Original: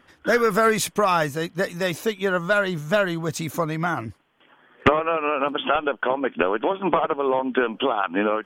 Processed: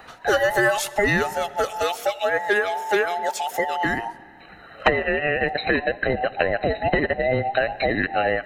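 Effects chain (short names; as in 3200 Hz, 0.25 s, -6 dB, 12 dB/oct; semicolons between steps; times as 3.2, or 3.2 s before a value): band inversion scrambler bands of 1000 Hz; 1.83–3.85 HPF 250 Hz 12 dB/oct; reverb RT60 1.6 s, pre-delay 35 ms, DRR 19 dB; three-band squash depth 40%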